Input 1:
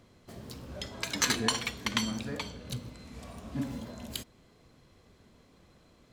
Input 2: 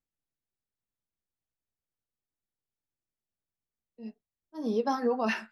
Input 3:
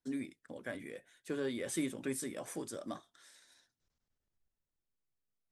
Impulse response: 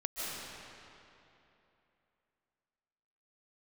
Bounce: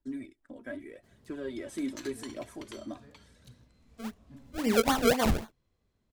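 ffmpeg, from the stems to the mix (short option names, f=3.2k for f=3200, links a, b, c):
-filter_complex "[0:a]adelay=750,volume=-19dB[a];[1:a]acrusher=samples=33:mix=1:aa=0.000001:lfo=1:lforange=33:lforate=3.8,volume=2.5dB[b];[2:a]highshelf=f=2.2k:g=-10,aecho=1:1:3.1:0.59,aphaser=in_gain=1:out_gain=1:delay=4.4:decay=0.48:speed=0.83:type=triangular,volume=-1.5dB[c];[a][b][c]amix=inputs=3:normalize=0,lowshelf=f=71:g=11"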